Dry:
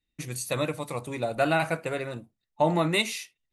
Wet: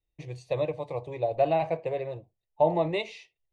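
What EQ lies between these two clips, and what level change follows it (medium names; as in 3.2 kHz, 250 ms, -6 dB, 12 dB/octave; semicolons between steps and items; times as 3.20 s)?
tape spacing loss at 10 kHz 40 dB; bass shelf 410 Hz -4 dB; static phaser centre 580 Hz, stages 4; +6.0 dB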